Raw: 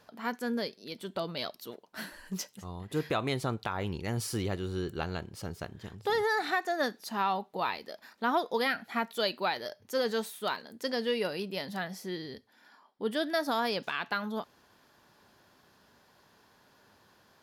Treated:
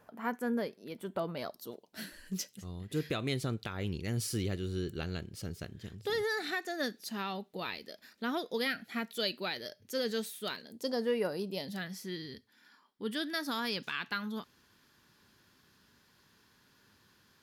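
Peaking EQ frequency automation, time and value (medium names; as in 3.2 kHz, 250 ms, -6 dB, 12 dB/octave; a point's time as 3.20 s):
peaking EQ -13.5 dB 1.2 oct
1.33 s 4.4 kHz
2.06 s 910 Hz
10.63 s 910 Hz
11.15 s 4.4 kHz
11.91 s 680 Hz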